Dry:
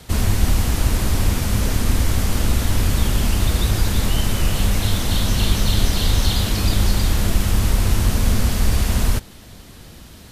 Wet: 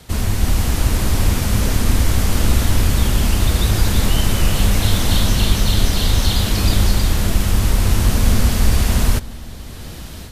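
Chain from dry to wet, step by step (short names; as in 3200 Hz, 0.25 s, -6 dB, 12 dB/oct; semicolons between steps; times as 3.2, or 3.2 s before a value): AGC gain up to 9 dB; on a send: darkening echo 0.192 s, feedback 84%, low-pass 2000 Hz, level -22 dB; on the sum: gain -1 dB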